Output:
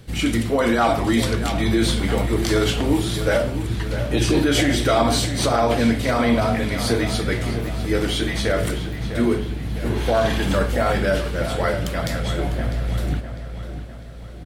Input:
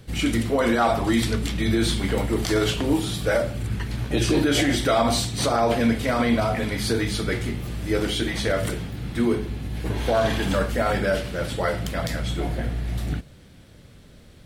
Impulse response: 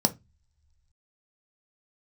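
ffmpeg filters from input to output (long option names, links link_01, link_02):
-filter_complex "[0:a]asplit=2[link_01][link_02];[link_02]adelay=651,lowpass=frequency=4000:poles=1,volume=-10dB,asplit=2[link_03][link_04];[link_04]adelay=651,lowpass=frequency=4000:poles=1,volume=0.52,asplit=2[link_05][link_06];[link_06]adelay=651,lowpass=frequency=4000:poles=1,volume=0.52,asplit=2[link_07][link_08];[link_08]adelay=651,lowpass=frequency=4000:poles=1,volume=0.52,asplit=2[link_09][link_10];[link_10]adelay=651,lowpass=frequency=4000:poles=1,volume=0.52,asplit=2[link_11][link_12];[link_12]adelay=651,lowpass=frequency=4000:poles=1,volume=0.52[link_13];[link_01][link_03][link_05][link_07][link_09][link_11][link_13]amix=inputs=7:normalize=0,volume=2dB"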